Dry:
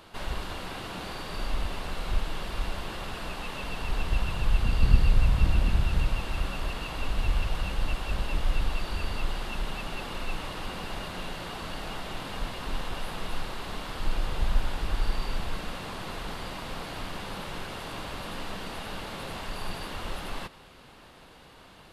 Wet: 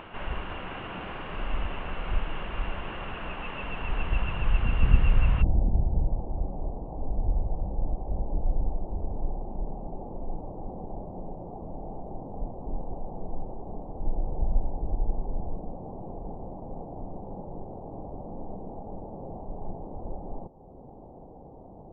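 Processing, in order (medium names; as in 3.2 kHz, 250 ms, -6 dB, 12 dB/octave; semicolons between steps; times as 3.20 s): elliptic low-pass 2.9 kHz, stop band 50 dB, from 5.41 s 810 Hz; upward compressor, threshold -39 dBFS; trim +1 dB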